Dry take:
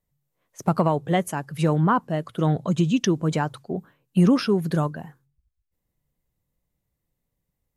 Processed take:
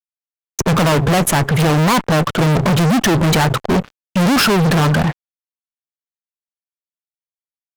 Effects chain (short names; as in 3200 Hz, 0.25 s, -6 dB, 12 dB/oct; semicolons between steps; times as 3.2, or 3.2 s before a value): Wiener smoothing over 9 samples; fuzz box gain 44 dB, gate -50 dBFS; gain +1 dB